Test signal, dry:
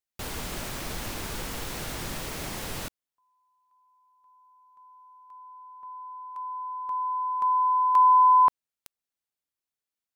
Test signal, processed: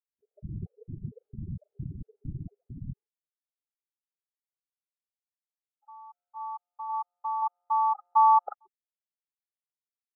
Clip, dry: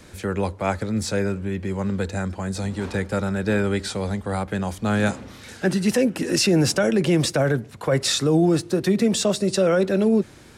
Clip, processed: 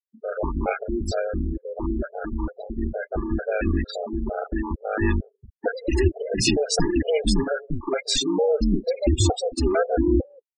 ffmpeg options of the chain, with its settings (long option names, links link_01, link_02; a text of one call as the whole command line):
ffmpeg -i in.wav -filter_complex "[0:a]aeval=exprs='val(0)*sin(2*PI*130*n/s)':channel_layout=same,afftfilt=real='re*gte(hypot(re,im),0.0501)':imag='im*gte(hypot(re,im),0.0501)':win_size=1024:overlap=0.75,acrossover=split=260|1000[link_01][link_02][link_03];[link_03]adelay=40[link_04];[link_01]adelay=180[link_05];[link_05][link_02][link_04]amix=inputs=3:normalize=0,afftfilt=real='re*gt(sin(2*PI*2.2*pts/sr)*(1-2*mod(floor(b*sr/1024/410),2)),0)':imag='im*gt(sin(2*PI*2.2*pts/sr)*(1-2*mod(floor(b*sr/1024/410),2)),0)':win_size=1024:overlap=0.75,volume=6dB" out.wav